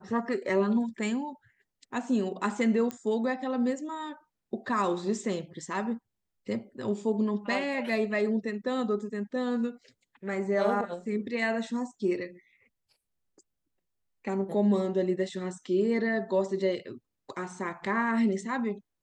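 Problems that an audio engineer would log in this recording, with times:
0:02.91: click −20 dBFS

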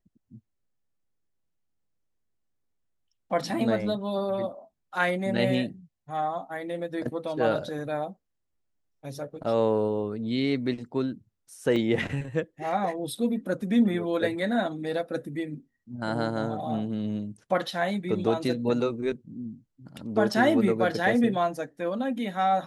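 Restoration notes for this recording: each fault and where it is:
0:11.76: drop-out 3.6 ms

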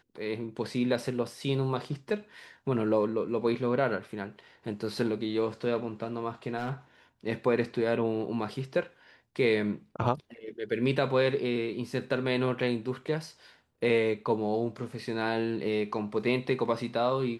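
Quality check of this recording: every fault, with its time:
0:06.58–0:06.73: clipping −28 dBFS

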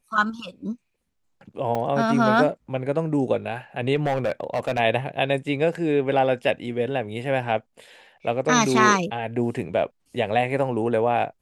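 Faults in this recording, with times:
0:01.75: drop-out 2.2 ms
0:03.95–0:04.80: clipping −18.5 dBFS

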